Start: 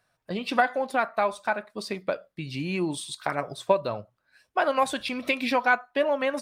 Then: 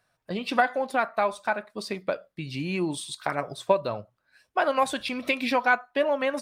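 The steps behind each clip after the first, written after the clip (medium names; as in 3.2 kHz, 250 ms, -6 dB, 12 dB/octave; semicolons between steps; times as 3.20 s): no audible change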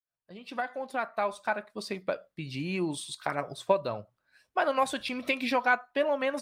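fade-in on the opening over 1.52 s; trim -3 dB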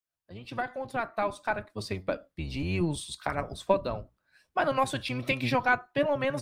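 octave divider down 1 oct, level +1 dB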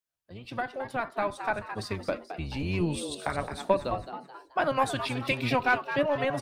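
frequency-shifting echo 216 ms, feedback 41%, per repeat +140 Hz, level -10 dB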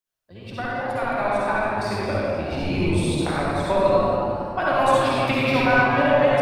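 reverberation RT60 2.4 s, pre-delay 49 ms, DRR -7.5 dB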